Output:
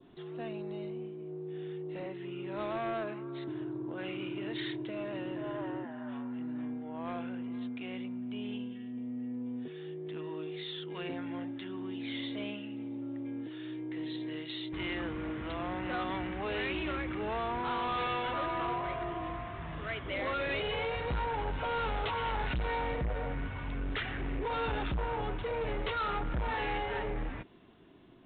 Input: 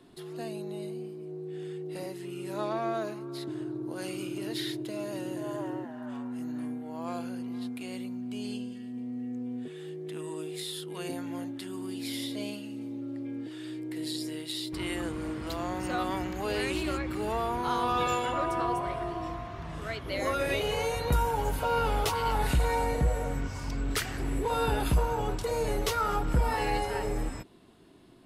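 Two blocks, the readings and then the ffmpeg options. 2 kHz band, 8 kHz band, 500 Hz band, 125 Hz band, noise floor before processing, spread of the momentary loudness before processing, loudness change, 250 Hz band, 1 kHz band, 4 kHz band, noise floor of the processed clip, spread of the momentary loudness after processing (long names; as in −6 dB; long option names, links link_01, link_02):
−0.5 dB, below −35 dB, −4.5 dB, −6.0 dB, −42 dBFS, 11 LU, −4.0 dB, −3.0 dB, −4.5 dB, −4.0 dB, −43 dBFS, 8 LU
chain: -af "adynamicequalizer=threshold=0.00355:dfrequency=2000:dqfactor=1.1:tfrequency=2000:tqfactor=1.1:attack=5:release=100:ratio=0.375:range=2.5:mode=boostabove:tftype=bell,aresample=8000,asoftclip=type=tanh:threshold=-28dB,aresample=44100,volume=-1.5dB"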